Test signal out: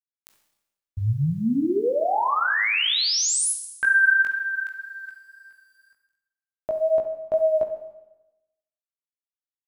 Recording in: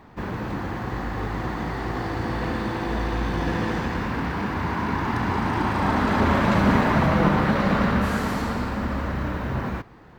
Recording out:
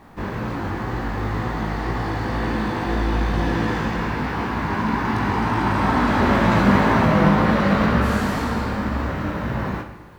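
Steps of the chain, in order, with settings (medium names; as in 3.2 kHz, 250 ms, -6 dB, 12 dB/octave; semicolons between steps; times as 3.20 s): bit crusher 11-bit; chorus 2 Hz, delay 17 ms, depth 3 ms; on a send: band-passed feedback delay 69 ms, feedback 47%, band-pass 910 Hz, level -12.5 dB; on the sum: Schroeder reverb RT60 1 s, combs from 29 ms, DRR 7.5 dB; trim +5 dB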